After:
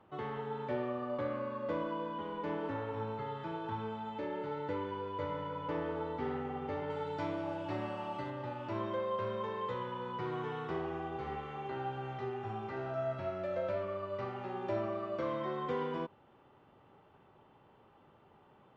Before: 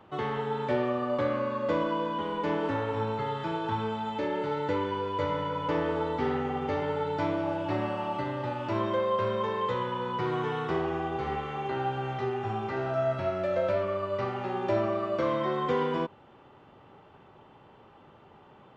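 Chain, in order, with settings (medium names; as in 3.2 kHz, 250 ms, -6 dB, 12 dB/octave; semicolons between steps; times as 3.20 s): treble shelf 4.5 kHz -10.5 dB, from 6.90 s +3 dB, from 8.30 s -5 dB; trim -8 dB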